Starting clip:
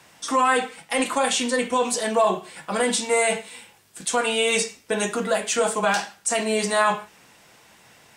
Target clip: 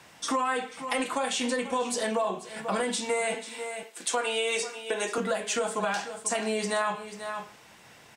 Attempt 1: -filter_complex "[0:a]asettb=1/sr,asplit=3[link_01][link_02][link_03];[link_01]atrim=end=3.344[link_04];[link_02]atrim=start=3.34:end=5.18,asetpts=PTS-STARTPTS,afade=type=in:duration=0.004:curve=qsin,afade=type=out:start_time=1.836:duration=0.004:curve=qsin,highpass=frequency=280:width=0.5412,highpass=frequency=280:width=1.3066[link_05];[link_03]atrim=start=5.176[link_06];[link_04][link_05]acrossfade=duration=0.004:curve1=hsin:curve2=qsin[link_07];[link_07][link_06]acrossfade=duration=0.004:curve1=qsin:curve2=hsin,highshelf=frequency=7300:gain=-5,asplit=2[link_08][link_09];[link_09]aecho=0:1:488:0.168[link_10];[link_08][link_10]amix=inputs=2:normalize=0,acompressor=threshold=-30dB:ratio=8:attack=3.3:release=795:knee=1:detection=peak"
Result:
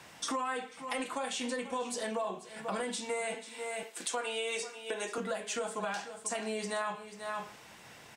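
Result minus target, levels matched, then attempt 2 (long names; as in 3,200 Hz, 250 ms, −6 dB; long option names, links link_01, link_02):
downward compressor: peak gain reduction +7 dB
-filter_complex "[0:a]asettb=1/sr,asplit=3[link_01][link_02][link_03];[link_01]atrim=end=3.344[link_04];[link_02]atrim=start=3.34:end=5.18,asetpts=PTS-STARTPTS,afade=type=in:duration=0.004:curve=qsin,afade=type=out:start_time=1.836:duration=0.004:curve=qsin,highpass=frequency=280:width=0.5412,highpass=frequency=280:width=1.3066[link_05];[link_03]atrim=start=5.176[link_06];[link_04][link_05]acrossfade=duration=0.004:curve1=hsin:curve2=qsin[link_07];[link_07][link_06]acrossfade=duration=0.004:curve1=qsin:curve2=hsin,highshelf=frequency=7300:gain=-5,asplit=2[link_08][link_09];[link_09]aecho=0:1:488:0.168[link_10];[link_08][link_10]amix=inputs=2:normalize=0,acompressor=threshold=-22dB:ratio=8:attack=3.3:release=795:knee=1:detection=peak"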